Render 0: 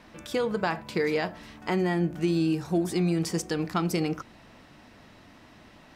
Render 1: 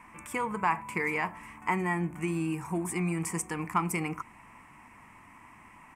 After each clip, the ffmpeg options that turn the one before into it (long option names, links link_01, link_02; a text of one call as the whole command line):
ffmpeg -i in.wav -af "firequalizer=gain_entry='entry(210,0);entry(590,-8);entry(980,14);entry(1500,0);entry(2200,11);entry(3800,-18);entry(8200,11);entry(14000,3)':delay=0.05:min_phase=1,volume=-4.5dB" out.wav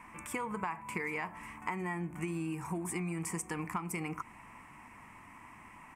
ffmpeg -i in.wav -af "acompressor=threshold=-33dB:ratio=10" out.wav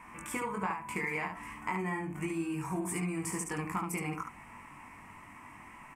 ffmpeg -i in.wav -af "aecho=1:1:21|72:0.668|0.562" out.wav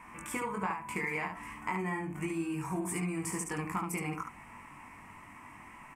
ffmpeg -i in.wav -af anull out.wav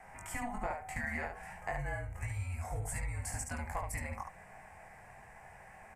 ffmpeg -i in.wav -af "afreqshift=-230,volume=-3dB" out.wav